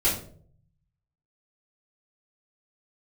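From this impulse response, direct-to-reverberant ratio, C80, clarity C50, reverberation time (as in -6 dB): -10.0 dB, 11.0 dB, 6.5 dB, 0.55 s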